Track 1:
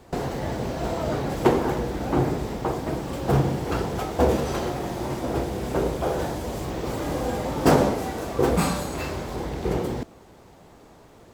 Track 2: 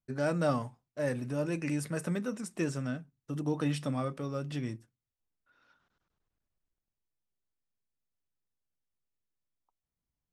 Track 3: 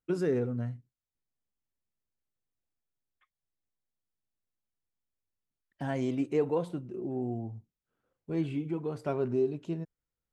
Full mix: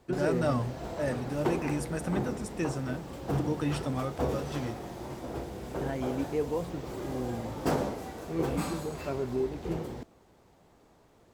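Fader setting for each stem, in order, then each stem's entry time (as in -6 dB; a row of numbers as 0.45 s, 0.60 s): -11.0 dB, 0.0 dB, -2.5 dB; 0.00 s, 0.00 s, 0.00 s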